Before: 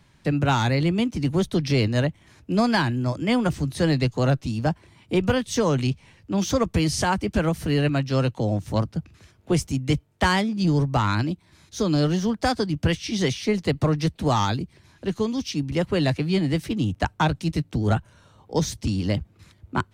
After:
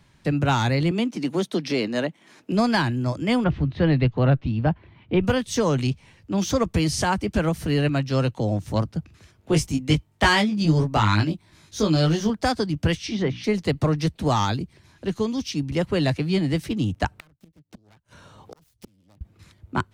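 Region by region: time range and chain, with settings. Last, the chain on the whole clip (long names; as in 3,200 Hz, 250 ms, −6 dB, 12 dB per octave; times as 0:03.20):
0:00.91–0:02.52: high-pass filter 200 Hz 24 dB per octave + high-shelf EQ 6,900 Hz −4.5 dB + multiband upward and downward compressor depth 40%
0:03.44–0:05.25: low-pass filter 3,300 Hz 24 dB per octave + low-shelf EQ 120 Hz +6.5 dB
0:09.51–0:12.30: dynamic equaliser 2,900 Hz, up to +4 dB, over −35 dBFS, Q 0.77 + double-tracking delay 19 ms −4 dB
0:12.98–0:13.44: treble cut that deepens with the level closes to 1,700 Hz, closed at −19.5 dBFS + mains-hum notches 60/120/180/240/300 Hz
0:17.11–0:19.21: phase distortion by the signal itself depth 0.66 ms + gate with flip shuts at −23 dBFS, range −36 dB + multiband upward and downward compressor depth 70%
whole clip: no processing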